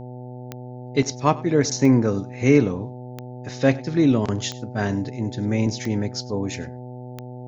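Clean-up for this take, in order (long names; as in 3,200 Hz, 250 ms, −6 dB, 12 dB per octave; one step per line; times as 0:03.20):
click removal
hum removal 124.6 Hz, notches 7
echo removal 99 ms −20.5 dB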